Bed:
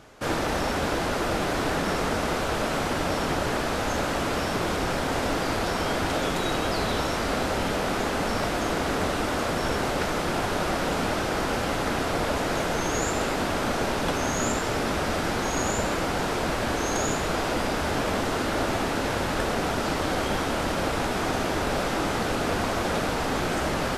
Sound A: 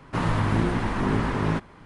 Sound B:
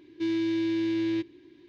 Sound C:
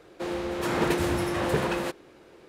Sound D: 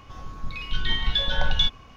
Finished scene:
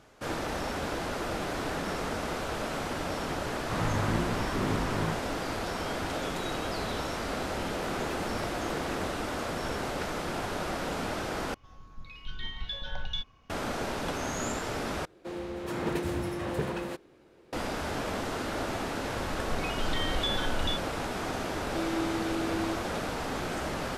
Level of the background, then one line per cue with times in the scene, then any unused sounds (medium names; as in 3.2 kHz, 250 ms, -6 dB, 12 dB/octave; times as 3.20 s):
bed -7 dB
3.56 s: add A -7 dB
7.20 s: add C -14 dB
11.54 s: replace with D -13 dB
15.05 s: replace with C -8.5 dB + bass shelf 400 Hz +5 dB
19.08 s: add D -3 dB + peak limiter -19.5 dBFS
21.54 s: add B -6.5 dB